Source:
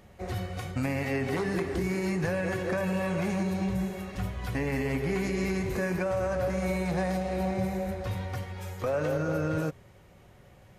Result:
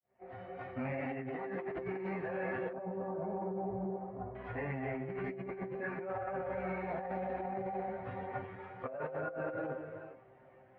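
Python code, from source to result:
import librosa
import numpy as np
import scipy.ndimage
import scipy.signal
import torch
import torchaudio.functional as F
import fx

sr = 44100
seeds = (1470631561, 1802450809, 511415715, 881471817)

y = fx.fade_in_head(x, sr, length_s=0.75)
y = scipy.signal.sosfilt(scipy.signal.butter(2, 85.0, 'highpass', fs=sr, output='sos'), y)
y = fx.peak_eq(y, sr, hz=690.0, db=7.5, octaves=0.51)
y = fx.rev_gated(y, sr, seeds[0], gate_ms=460, shape='rising', drr_db=9.5)
y = fx.chorus_voices(y, sr, voices=6, hz=1.5, base_ms=18, depth_ms=3.0, mix_pct=60)
y = fx.low_shelf(y, sr, hz=150.0, db=-11.0)
y = fx.comb_fb(y, sr, f0_hz=130.0, decay_s=0.17, harmonics='all', damping=0.0, mix_pct=90)
y = fx.over_compress(y, sr, threshold_db=-42.0, ratio=-1.0)
y = fx.lowpass(y, sr, hz=fx.steps((0.0, 2200.0), (2.73, 1000.0), (4.35, 2100.0)), slope=24)
y = y + 10.0 ** (-24.0 / 20.0) * np.pad(y, (int(384 * sr / 1000.0), 0))[:len(y)]
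y = y * librosa.db_to_amplitude(3.5)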